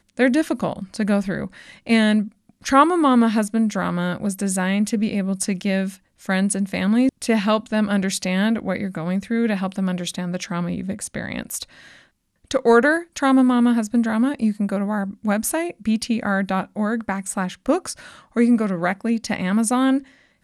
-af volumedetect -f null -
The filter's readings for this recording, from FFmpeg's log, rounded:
mean_volume: -20.9 dB
max_volume: -2.7 dB